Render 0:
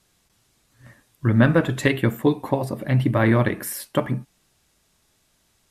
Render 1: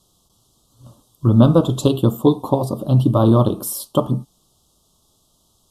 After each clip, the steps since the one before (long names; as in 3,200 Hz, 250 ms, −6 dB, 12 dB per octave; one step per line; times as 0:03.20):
Chebyshev band-stop filter 1,200–3,200 Hz, order 3
level +5 dB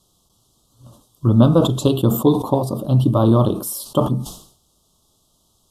level that may fall only so fast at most 99 dB per second
level −1 dB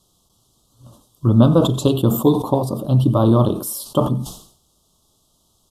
single-tap delay 92 ms −20 dB